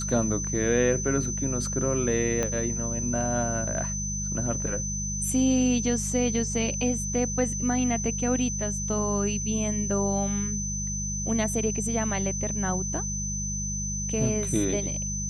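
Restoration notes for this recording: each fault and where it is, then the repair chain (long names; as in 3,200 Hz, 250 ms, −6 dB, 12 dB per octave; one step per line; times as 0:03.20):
mains hum 50 Hz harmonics 4 −33 dBFS
whistle 6,100 Hz −31 dBFS
0:02.43: click −14 dBFS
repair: click removal
hum removal 50 Hz, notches 4
notch filter 6,100 Hz, Q 30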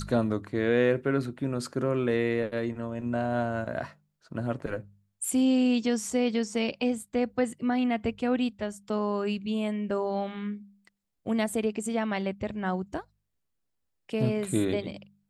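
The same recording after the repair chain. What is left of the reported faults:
0:02.43: click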